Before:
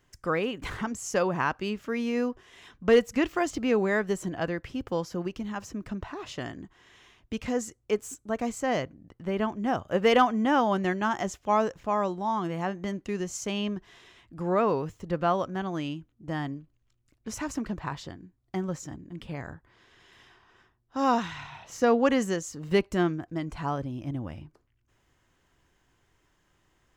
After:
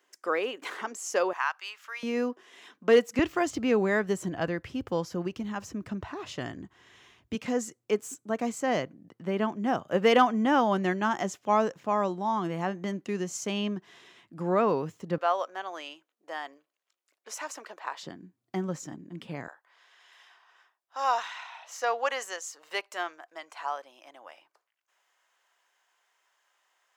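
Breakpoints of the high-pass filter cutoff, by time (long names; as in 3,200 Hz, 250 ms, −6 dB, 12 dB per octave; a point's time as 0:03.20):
high-pass filter 24 dB per octave
340 Hz
from 0:01.33 920 Hz
from 0:02.03 230 Hz
from 0:03.19 67 Hz
from 0:07.35 140 Hz
from 0:15.18 510 Hz
from 0:18.03 150 Hz
from 0:19.48 630 Hz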